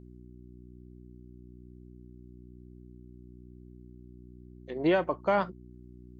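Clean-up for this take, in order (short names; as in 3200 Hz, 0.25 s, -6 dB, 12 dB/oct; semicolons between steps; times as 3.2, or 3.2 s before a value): de-hum 61.1 Hz, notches 6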